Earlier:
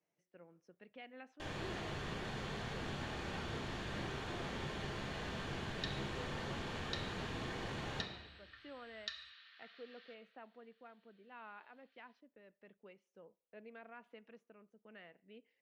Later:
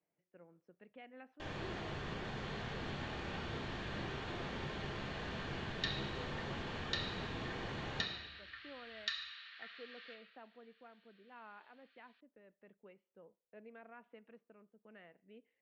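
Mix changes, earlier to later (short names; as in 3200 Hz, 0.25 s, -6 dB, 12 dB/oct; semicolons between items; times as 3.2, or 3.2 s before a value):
speech: add air absorption 300 m; first sound: add running mean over 4 samples; second sound: send +8.5 dB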